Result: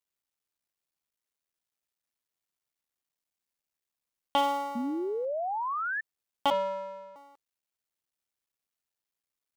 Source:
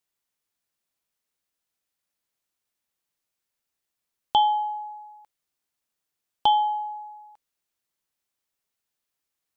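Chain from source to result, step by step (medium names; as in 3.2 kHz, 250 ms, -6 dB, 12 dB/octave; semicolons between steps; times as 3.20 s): cycle switcher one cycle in 3, muted; 4.75–6.01 s: painted sound rise 230–1800 Hz -27 dBFS; 6.50–7.16 s: vocoder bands 16, square 193 Hz; trim -4.5 dB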